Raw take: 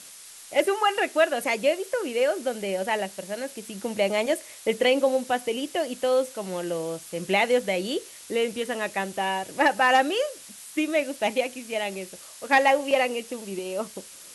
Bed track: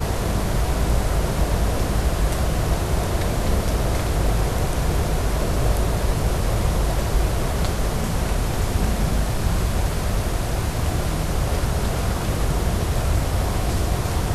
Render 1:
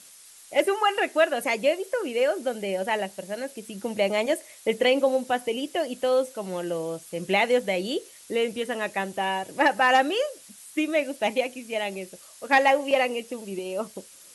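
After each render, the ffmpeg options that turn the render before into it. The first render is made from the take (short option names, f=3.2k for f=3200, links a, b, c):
-af "afftdn=nr=6:nf=-45"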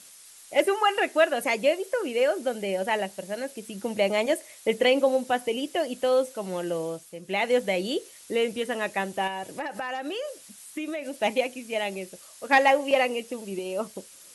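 -filter_complex "[0:a]asettb=1/sr,asplit=3[a][b][c];[a]atrim=end=9.274[d];[b]atrim=start=9.27:end=11.18,asetpts=PTS-STARTPTS,afade=t=in:d=0.004:c=qsin,afade=t=out:st=1.906:d=0.004:c=qsin,acompressor=threshold=-28dB:ratio=12:attack=3.2:release=140:knee=1:detection=peak[e];[c]atrim=start=11.176[f];[d][e]acrossfade=d=0.004:c1=hsin:c2=qsin[g];[g][f]acrossfade=d=0.004:c1=qsin:c2=hsin,asplit=3[h][i][j];[h]atrim=end=7.21,asetpts=PTS-STARTPTS,afade=t=out:st=6.85:d=0.36:silence=0.298538[k];[i]atrim=start=7.21:end=7.23,asetpts=PTS-STARTPTS,volume=-10.5dB[l];[j]atrim=start=7.23,asetpts=PTS-STARTPTS,afade=t=in:d=0.36:silence=0.298538[m];[k][l][m]concat=n=3:v=0:a=1"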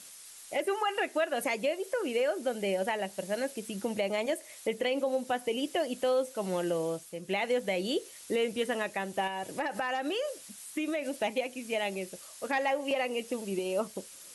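-af "alimiter=limit=-20.5dB:level=0:latency=1:release=267"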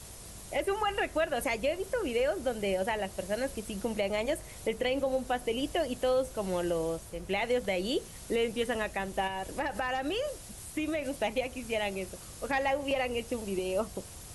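-filter_complex "[1:a]volume=-27.5dB[a];[0:a][a]amix=inputs=2:normalize=0"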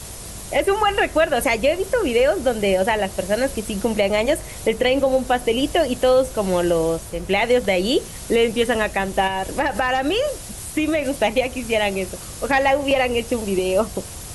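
-af "volume=12dB"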